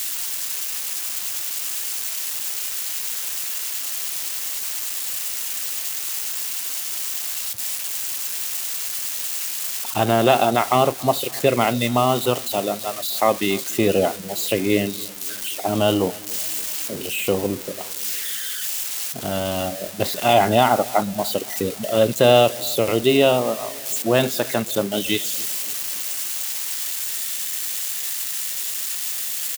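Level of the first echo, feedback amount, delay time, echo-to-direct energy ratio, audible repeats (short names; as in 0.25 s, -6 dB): -22.5 dB, 58%, 0.284 s, -21.0 dB, 3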